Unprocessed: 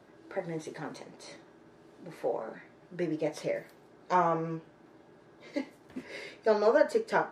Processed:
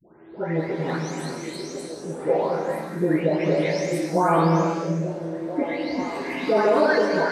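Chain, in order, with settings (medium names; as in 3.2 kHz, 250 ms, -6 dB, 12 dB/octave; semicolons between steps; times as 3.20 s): delay that grows with frequency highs late, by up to 586 ms; peak limiter -24.5 dBFS, peak gain reduction 9 dB; level rider gain up to 8 dB; on a send: repeats whose band climbs or falls 446 ms, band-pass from 190 Hz, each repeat 0.7 oct, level -3 dB; on the sum: gated-style reverb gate 440 ms flat, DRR 2 dB; trim +5 dB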